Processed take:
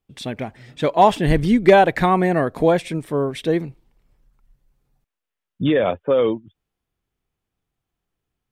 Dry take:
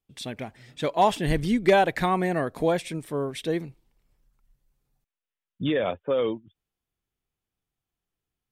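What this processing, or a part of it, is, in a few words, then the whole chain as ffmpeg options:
behind a face mask: -af "highshelf=f=3100:g=-7.5,volume=2.37"

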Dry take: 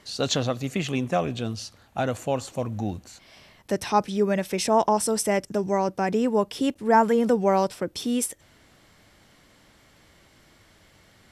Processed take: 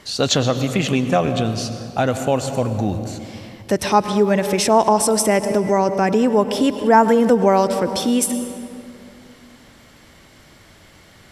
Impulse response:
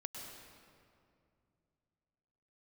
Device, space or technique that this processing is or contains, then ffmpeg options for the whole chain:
ducked reverb: -filter_complex "[0:a]asplit=3[s0][s1][s2];[1:a]atrim=start_sample=2205[s3];[s1][s3]afir=irnorm=-1:irlink=0[s4];[s2]apad=whole_len=499024[s5];[s4][s5]sidechaincompress=threshold=0.0501:ratio=8:attack=22:release=107,volume=0.944[s6];[s0][s6]amix=inputs=2:normalize=0,volume=1.68"

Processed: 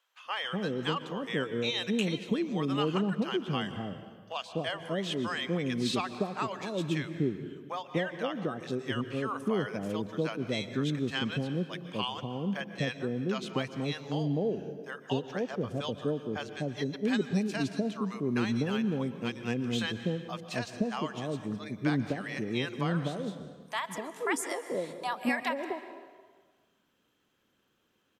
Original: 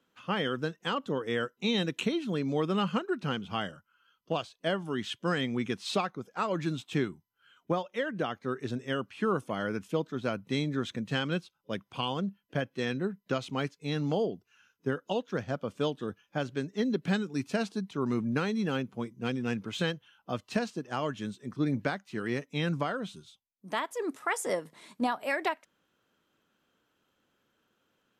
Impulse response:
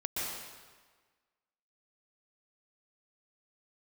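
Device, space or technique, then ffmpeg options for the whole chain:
ducked reverb: -filter_complex "[0:a]equalizer=f=1400:t=o:w=0.22:g=-6,asplit=3[s0][s1][s2];[1:a]atrim=start_sample=2205[s3];[s1][s3]afir=irnorm=-1:irlink=0[s4];[s2]apad=whole_len=1243399[s5];[s4][s5]sidechaincompress=threshold=0.0251:ratio=8:attack=5.5:release=236,volume=0.251[s6];[s0][s6]amix=inputs=2:normalize=0,acrossover=split=670[s7][s8];[s7]adelay=250[s9];[s9][s8]amix=inputs=2:normalize=0"

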